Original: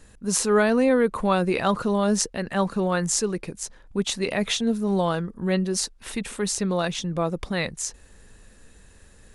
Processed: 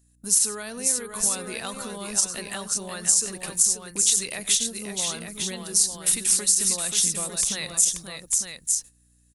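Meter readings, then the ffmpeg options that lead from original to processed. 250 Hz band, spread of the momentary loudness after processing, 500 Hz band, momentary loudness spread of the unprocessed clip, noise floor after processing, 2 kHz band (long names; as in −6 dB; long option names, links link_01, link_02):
−13.5 dB, 10 LU, −13.5 dB, 10 LU, −61 dBFS, −6.0 dB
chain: -af "agate=range=-26dB:threshold=-40dB:ratio=16:detection=peak,acompressor=threshold=-29dB:ratio=6,aecho=1:1:94|532|900:0.133|0.473|0.447,crystalizer=i=1.5:c=0,aeval=exprs='val(0)+0.00178*(sin(2*PI*60*n/s)+sin(2*PI*2*60*n/s)/2+sin(2*PI*3*60*n/s)/3+sin(2*PI*4*60*n/s)/4+sin(2*PI*5*60*n/s)/5)':channel_layout=same,crystalizer=i=6.5:c=0,alimiter=level_in=-0.5dB:limit=-1dB:release=50:level=0:latency=1,volume=-6dB"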